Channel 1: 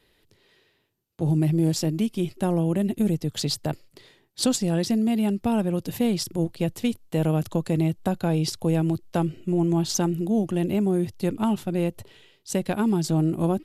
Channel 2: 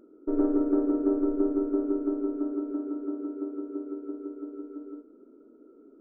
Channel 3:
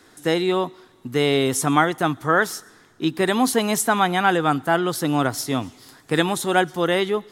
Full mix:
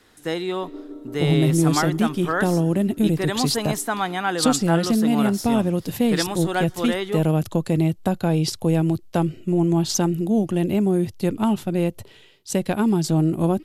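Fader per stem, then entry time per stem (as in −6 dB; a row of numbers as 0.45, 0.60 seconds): +3.0, −12.5, −5.5 decibels; 0.00, 0.35, 0.00 seconds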